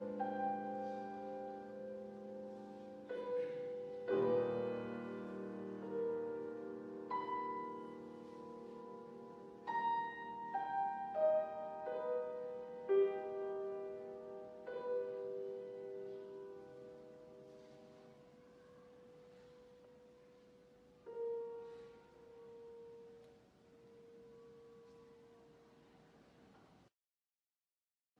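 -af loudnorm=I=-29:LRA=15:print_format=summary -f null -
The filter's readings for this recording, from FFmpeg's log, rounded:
Input Integrated:    -43.1 LUFS
Input True Peak:     -25.2 dBTP
Input LRA:            22.2 LU
Input Threshold:     -55.2 LUFS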